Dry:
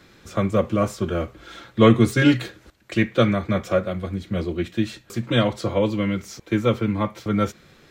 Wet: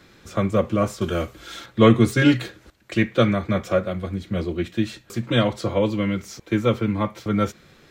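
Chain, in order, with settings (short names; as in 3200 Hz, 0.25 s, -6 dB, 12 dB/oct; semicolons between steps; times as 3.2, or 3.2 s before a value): 1.01–1.66 high shelf 3500 Hz +12 dB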